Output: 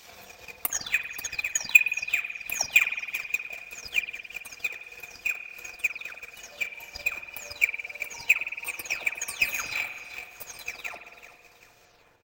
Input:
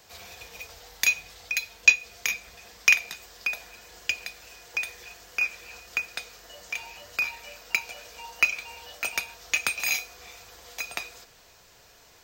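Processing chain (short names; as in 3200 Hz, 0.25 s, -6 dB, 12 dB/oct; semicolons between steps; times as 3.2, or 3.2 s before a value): spectral delay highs early, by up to 0.382 s; feedback echo 0.383 s, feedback 42%, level -12.5 dB; in parallel at -9.5 dB: sample-and-hold 9×; on the sum: transient shaper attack +9 dB, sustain -12 dB; spring tank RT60 1.8 s, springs 46 ms, chirp 65 ms, DRR 7 dB; gain -4.5 dB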